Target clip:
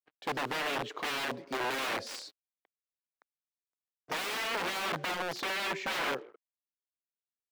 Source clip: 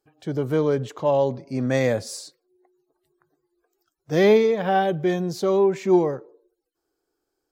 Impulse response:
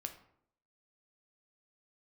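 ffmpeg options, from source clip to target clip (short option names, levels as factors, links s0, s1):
-filter_complex "[0:a]equalizer=f=4600:t=o:w=1.8:g=6,aeval=exprs='(mod(14.1*val(0)+1,2)-1)/14.1':c=same,acontrast=64,acrusher=bits=6:mix=0:aa=0.5,acrossover=split=230 3700:gain=0.141 1 0.2[s0][s1][s2];[s0][s1][s2]amix=inputs=3:normalize=0,volume=0.355"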